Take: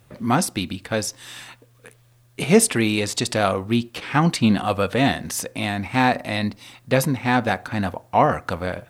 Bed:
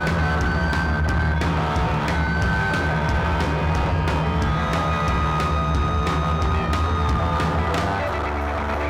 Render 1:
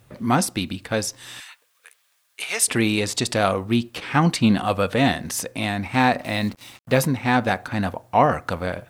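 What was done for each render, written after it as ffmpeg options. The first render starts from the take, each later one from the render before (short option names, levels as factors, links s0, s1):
-filter_complex "[0:a]asettb=1/sr,asplit=3[s0][s1][s2];[s0]atrim=end=1.404[s3];[s1]atrim=start=1.4:end=2.68,asetpts=PTS-STARTPTS,afade=t=in:d=0.004:c=qsin,afade=t=out:st=1.276:d=0.004:c=qsin,highpass=1300[s4];[s2]atrim=start=2.676[s5];[s3][s4]acrossfade=d=0.004:c1=hsin:c2=qsin[s6];[s6][s5]acrossfade=d=0.004:c1=qsin:c2=hsin,asettb=1/sr,asplit=3[s7][s8][s9];[s7]atrim=end=6.214[s10];[s8]atrim=start=6.21:end=7.07,asetpts=PTS-STARTPTS,afade=t=in:d=0.004:c=qsin,afade=t=out:st=0.856:d=0.004:c=qsin,acrusher=bits=6:mix=0:aa=0.5[s11];[s9]atrim=start=7.066[s12];[s10][s11]acrossfade=d=0.004:c1=hsin:c2=qsin[s13];[s13][s12]acrossfade=d=0.004:c1=qsin:c2=hsin"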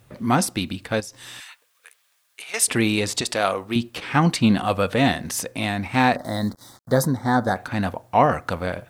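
-filter_complex "[0:a]asettb=1/sr,asplit=3[s0][s1][s2];[s0]atrim=end=1.004[s3];[s1]atrim=start=1:end=2.54,asetpts=PTS-STARTPTS,afade=t=in:d=0.004:c=qsin,afade=t=out:st=1.536:d=0.004:c=qsin,acompressor=threshold=0.02:ratio=6:attack=3.2:release=140:knee=1:detection=peak[s4];[s2]atrim=start=2.536[s5];[s3][s4]acrossfade=d=0.004:c1=hsin:c2=qsin[s6];[s6][s5]acrossfade=d=0.004:c1=qsin:c2=hsin,asettb=1/sr,asplit=3[s7][s8][s9];[s7]atrim=end=3.214[s10];[s8]atrim=start=3.21:end=3.76,asetpts=PTS-STARTPTS,afade=t=in:d=0.004:c=qsin,afade=t=out:st=0.546:d=0.004:c=qsin,equalizer=f=120:t=o:w=2.1:g=-12.5[s11];[s9]atrim=start=3.756[s12];[s10][s11]acrossfade=d=0.004:c1=hsin:c2=qsin[s13];[s13][s12]acrossfade=d=0.004:c1=qsin:c2=hsin,asettb=1/sr,asplit=3[s14][s15][s16];[s14]atrim=end=6.164[s17];[s15]atrim=start=6.16:end=7.56,asetpts=PTS-STARTPTS,afade=t=in:d=0.004:c=qsin,afade=t=out:st=1.396:d=0.004:c=qsin,asuperstop=centerf=2600:order=4:qfactor=1.1[s18];[s16]atrim=start=7.556[s19];[s17][s18]acrossfade=d=0.004:c1=hsin:c2=qsin[s20];[s20][s19]acrossfade=d=0.004:c1=qsin:c2=hsin"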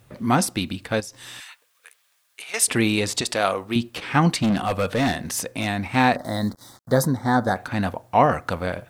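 -filter_complex "[0:a]asplit=3[s0][s1][s2];[s0]afade=t=out:st=4.37:d=0.02[s3];[s1]asoftclip=type=hard:threshold=0.141,afade=t=in:st=4.37:d=0.02,afade=t=out:st=5.66:d=0.02[s4];[s2]afade=t=in:st=5.66:d=0.02[s5];[s3][s4][s5]amix=inputs=3:normalize=0"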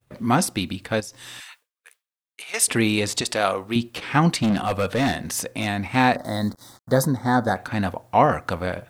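-af "agate=range=0.0224:threshold=0.00501:ratio=3:detection=peak"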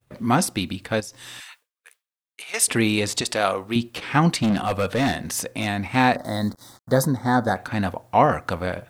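-af anull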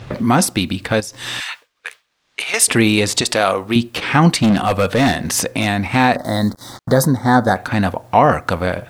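-filter_complex "[0:a]acrossover=split=5800[s0][s1];[s0]acompressor=mode=upward:threshold=0.0794:ratio=2.5[s2];[s2][s1]amix=inputs=2:normalize=0,alimiter=level_in=2.24:limit=0.891:release=50:level=0:latency=1"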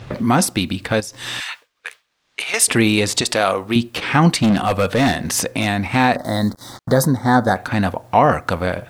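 -af "volume=0.841"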